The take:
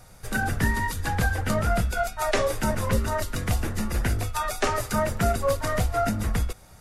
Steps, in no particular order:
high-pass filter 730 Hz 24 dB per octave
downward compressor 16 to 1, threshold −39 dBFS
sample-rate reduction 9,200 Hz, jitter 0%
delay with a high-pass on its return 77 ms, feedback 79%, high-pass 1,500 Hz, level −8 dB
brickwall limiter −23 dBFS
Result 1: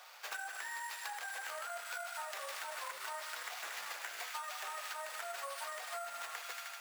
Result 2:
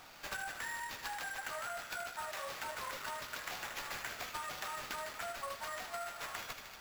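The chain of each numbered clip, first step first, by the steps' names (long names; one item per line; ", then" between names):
sample-rate reduction, then delay with a high-pass on its return, then brickwall limiter, then high-pass filter, then downward compressor
high-pass filter, then brickwall limiter, then downward compressor, then delay with a high-pass on its return, then sample-rate reduction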